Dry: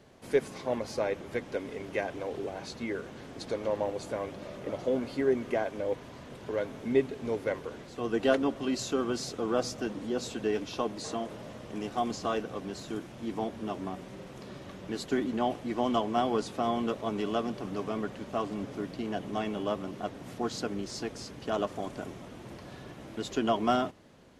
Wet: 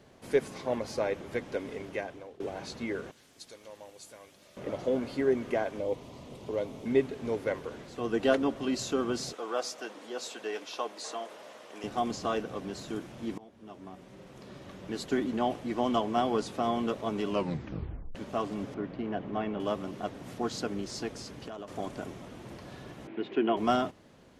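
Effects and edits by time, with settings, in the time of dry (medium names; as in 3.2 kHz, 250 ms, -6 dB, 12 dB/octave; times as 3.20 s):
1.76–2.40 s: fade out, to -20.5 dB
3.11–4.57 s: pre-emphasis filter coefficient 0.9
5.79–6.86 s: peaking EQ 1.6 kHz -13.5 dB 0.54 oct
9.33–11.84 s: high-pass 560 Hz
13.38–15.08 s: fade in, from -23 dB
17.27 s: tape stop 0.88 s
18.74–19.60 s: low-pass 2.3 kHz
21.09–21.68 s: compression 8:1, threshold -37 dBFS
23.07–23.57 s: cabinet simulation 210–2900 Hz, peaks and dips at 360 Hz +8 dB, 560 Hz -6 dB, 1.2 kHz -5 dB, 2.4 kHz +3 dB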